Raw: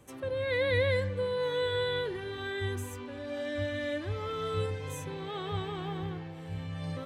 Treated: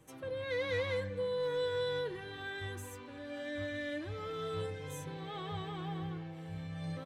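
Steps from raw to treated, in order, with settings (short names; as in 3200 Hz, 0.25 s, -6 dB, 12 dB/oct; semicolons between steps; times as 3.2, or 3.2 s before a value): soft clip -23.5 dBFS, distortion -19 dB; comb 6.3 ms, depth 48%; gain -5 dB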